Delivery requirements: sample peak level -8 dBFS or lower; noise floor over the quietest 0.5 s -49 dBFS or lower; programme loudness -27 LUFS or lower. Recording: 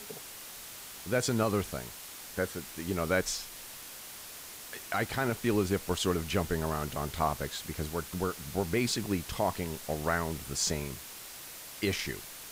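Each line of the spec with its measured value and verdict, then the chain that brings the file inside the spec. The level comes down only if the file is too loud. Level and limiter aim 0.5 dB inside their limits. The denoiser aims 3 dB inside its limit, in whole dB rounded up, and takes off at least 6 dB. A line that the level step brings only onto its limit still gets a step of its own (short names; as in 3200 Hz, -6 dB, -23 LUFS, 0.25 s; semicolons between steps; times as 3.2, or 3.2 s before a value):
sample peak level -15.5 dBFS: OK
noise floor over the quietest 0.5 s -46 dBFS: fail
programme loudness -33.5 LUFS: OK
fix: denoiser 6 dB, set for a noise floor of -46 dBFS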